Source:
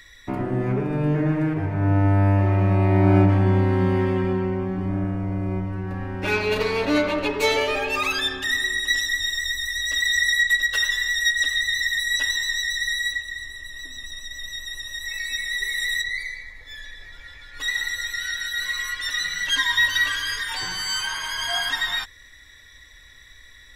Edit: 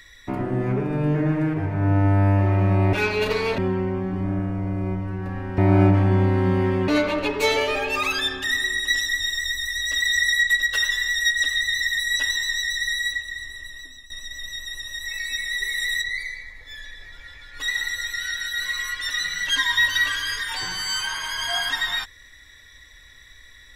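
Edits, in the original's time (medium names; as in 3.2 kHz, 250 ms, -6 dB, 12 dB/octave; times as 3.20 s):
2.93–4.23 s: swap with 6.23–6.88 s
13.64–14.10 s: fade out, to -13.5 dB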